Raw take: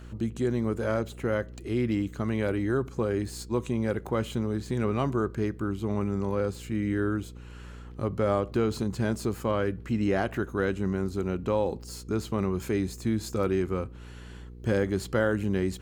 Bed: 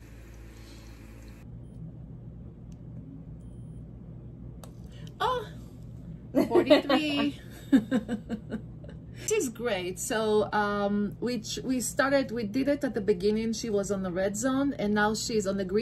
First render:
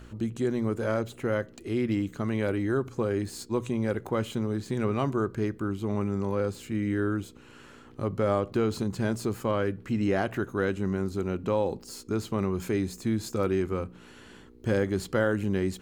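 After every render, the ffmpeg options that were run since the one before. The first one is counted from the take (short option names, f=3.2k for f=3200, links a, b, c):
-af "bandreject=f=60:t=h:w=4,bandreject=f=120:t=h:w=4,bandreject=f=180:t=h:w=4"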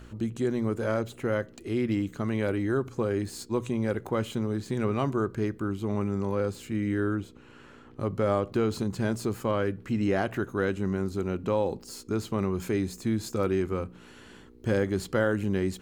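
-filter_complex "[0:a]asettb=1/sr,asplit=3[a][b][c];[a]atrim=end=7.154[d];[b]atrim=start=7.15:end=8,asetpts=PTS-STARTPTS,afade=t=in:d=0.004:c=qsin,afade=t=out:st=0.846:d=0.004:c=qsin,highshelf=f=4.7k:g=-10[e];[c]atrim=start=7.996[f];[d][e]acrossfade=d=0.004:c1=hsin:c2=qsin[g];[g][f]acrossfade=d=0.004:c1=qsin:c2=hsin"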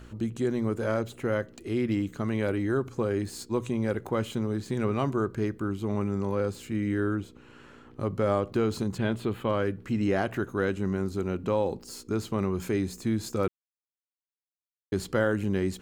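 -filter_complex "[0:a]asettb=1/sr,asplit=3[a][b][c];[a]atrim=end=8.984[d];[b]atrim=start=8.98:end=9.49,asetpts=PTS-STARTPTS,afade=t=in:d=0.004:c=qsin,afade=t=out:st=0.506:d=0.004:c=qsin,highshelf=f=4.3k:t=q:w=3:g=-8.5[e];[c]atrim=start=9.486[f];[d][e]acrossfade=d=0.004:c1=hsin:c2=qsin[g];[g][f]acrossfade=d=0.004:c1=qsin:c2=hsin,asplit=3[h][i][j];[h]atrim=end=13.48,asetpts=PTS-STARTPTS,afade=t=out:st=13.476:d=0.004:c=hsin[k];[i]atrim=start=13.48:end=14.92,asetpts=PTS-STARTPTS,volume=0[l];[j]atrim=start=14.92,asetpts=PTS-STARTPTS,afade=t=in:d=0.004:c=hsin[m];[k][l][m]concat=n=3:v=0:a=1"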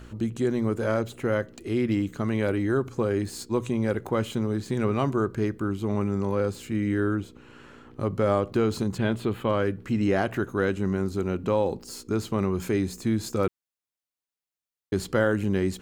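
-af "volume=2.5dB"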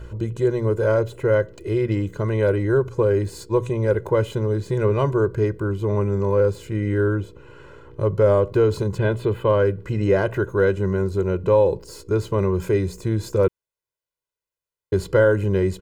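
-af "tiltshelf=f=1.4k:g=4.5,aecho=1:1:2:0.89"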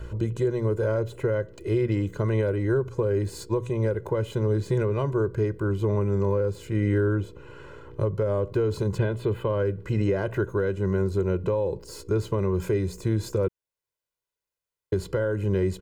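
-filter_complex "[0:a]alimiter=limit=-14dB:level=0:latency=1:release=430,acrossover=split=380[a][b];[b]acompressor=threshold=-29dB:ratio=2[c];[a][c]amix=inputs=2:normalize=0"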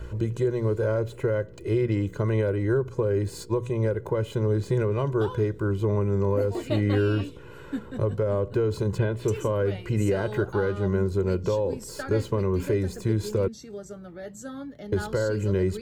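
-filter_complex "[1:a]volume=-10.5dB[a];[0:a][a]amix=inputs=2:normalize=0"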